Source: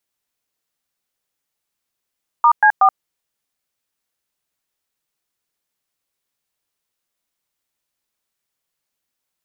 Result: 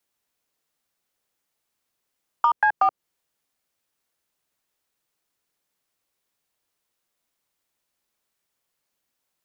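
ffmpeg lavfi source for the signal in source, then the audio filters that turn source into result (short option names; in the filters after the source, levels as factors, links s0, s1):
-f lavfi -i "aevalsrc='0.299*clip(min(mod(t,0.186),0.077-mod(t,0.186))/0.002,0,1)*(eq(floor(t/0.186),0)*(sin(2*PI*941*mod(t,0.186))+sin(2*PI*1209*mod(t,0.186)))+eq(floor(t/0.186),1)*(sin(2*PI*852*mod(t,0.186))+sin(2*PI*1633*mod(t,0.186)))+eq(floor(t/0.186),2)*(sin(2*PI*770*mod(t,0.186))+sin(2*PI*1209*mod(t,0.186))))':d=0.558:s=44100"
-filter_complex "[0:a]acrossover=split=450[s0][s1];[s1]acompressor=threshold=0.126:ratio=10[s2];[s0][s2]amix=inputs=2:normalize=0,equalizer=f=520:w=0.34:g=3,acrossover=split=730|950[s3][s4][s5];[s4]asoftclip=type=tanh:threshold=0.0376[s6];[s3][s6][s5]amix=inputs=3:normalize=0"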